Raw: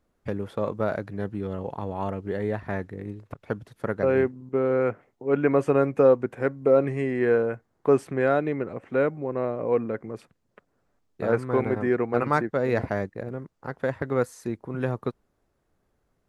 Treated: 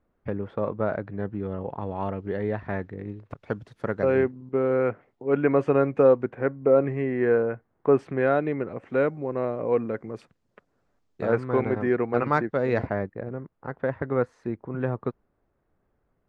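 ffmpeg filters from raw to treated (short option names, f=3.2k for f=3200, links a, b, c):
-af "asetnsamples=n=441:p=0,asendcmd='1.82 lowpass f 3500;3.3 lowpass f 6400;4.17 lowpass f 3800;6.3 lowpass f 2300;7.99 lowpass f 3600;8.78 lowpass f 7100;11.25 lowpass f 4600;12.87 lowpass f 2100',lowpass=2.2k"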